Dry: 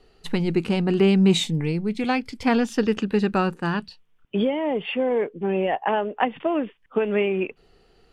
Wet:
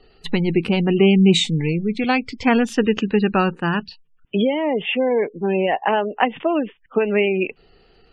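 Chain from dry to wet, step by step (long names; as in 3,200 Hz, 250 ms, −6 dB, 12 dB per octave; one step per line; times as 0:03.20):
parametric band 2,600 Hz +3.5 dB 1.2 octaves
gate on every frequency bin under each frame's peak −30 dB strong
level +3.5 dB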